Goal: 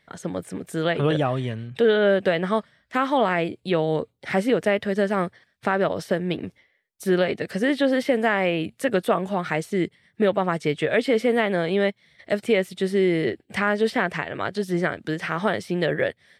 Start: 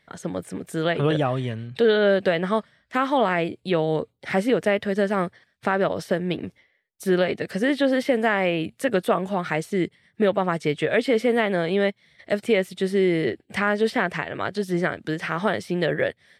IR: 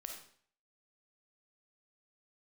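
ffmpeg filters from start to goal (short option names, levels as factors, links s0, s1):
-filter_complex "[0:a]asettb=1/sr,asplit=3[s0][s1][s2];[s0]atrim=end=1.694[s3];[s1]atrim=start=1.69:end=2.27,asetpts=PTS-STARTPTS,afade=t=in:d=0.004:c=qsin,afade=t=out:st=0.576:d=0.004:c=qsin,equalizer=f=4300:w=5.7:g=-10[s4];[s2]atrim=start=2.266[s5];[s3][s4]acrossfade=d=0.004:c1=hsin:c2=qsin[s6];[s6][s5]acrossfade=d=0.004:c1=qsin:c2=hsin"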